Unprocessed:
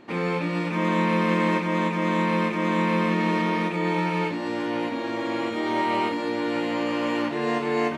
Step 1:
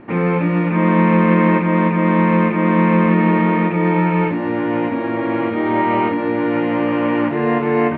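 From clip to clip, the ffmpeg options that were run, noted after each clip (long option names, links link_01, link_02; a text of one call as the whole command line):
ffmpeg -i in.wav -af "lowpass=frequency=2400:width=0.5412,lowpass=frequency=2400:width=1.3066,lowshelf=frequency=150:gain=11,volume=6.5dB" out.wav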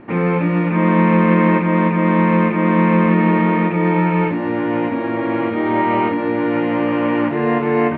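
ffmpeg -i in.wav -af anull out.wav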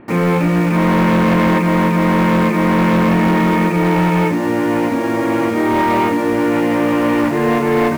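ffmpeg -i in.wav -filter_complex "[0:a]asplit=2[link_01][link_02];[link_02]acrusher=bits=4:mix=0:aa=0.000001,volume=-6.5dB[link_03];[link_01][link_03]amix=inputs=2:normalize=0,asoftclip=type=hard:threshold=-10dB" out.wav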